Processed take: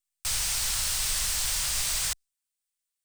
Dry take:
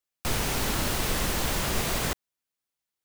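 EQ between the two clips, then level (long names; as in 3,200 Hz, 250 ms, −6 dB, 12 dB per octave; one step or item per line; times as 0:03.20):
dynamic equaliser 5,200 Hz, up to +6 dB, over −48 dBFS, Q 1.3
guitar amp tone stack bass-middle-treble 10-0-10
parametric band 8,500 Hz +8.5 dB 0.38 octaves
0.0 dB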